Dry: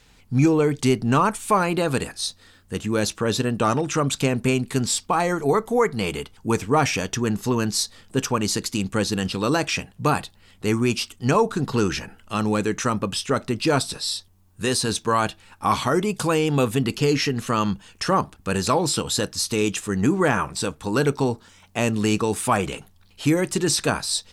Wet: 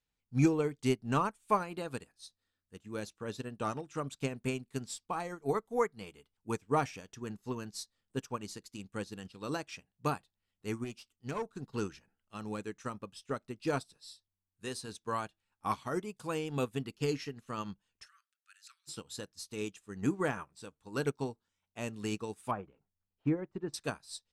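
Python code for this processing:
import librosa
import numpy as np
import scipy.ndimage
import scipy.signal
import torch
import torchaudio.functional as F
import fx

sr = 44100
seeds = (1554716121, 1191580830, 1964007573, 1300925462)

y = fx.tube_stage(x, sr, drive_db=15.0, bias=0.35, at=(10.84, 11.53))
y = fx.steep_highpass(y, sr, hz=1300.0, slope=72, at=(18.05, 18.87), fade=0.02)
y = fx.lowpass(y, sr, hz=1300.0, slope=12, at=(22.51, 23.74))
y = fx.upward_expand(y, sr, threshold_db=-32.0, expansion=2.5)
y = y * librosa.db_to_amplitude(-7.0)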